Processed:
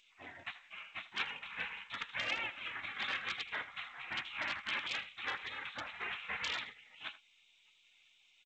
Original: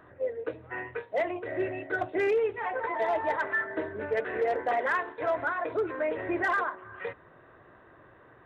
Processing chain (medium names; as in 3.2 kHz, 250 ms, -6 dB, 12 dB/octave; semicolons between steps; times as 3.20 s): spectral gate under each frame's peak -25 dB weak; tilt shelf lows -9.5 dB, about 1.2 kHz; speakerphone echo 80 ms, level -15 dB; trim +5 dB; G.722 64 kbps 16 kHz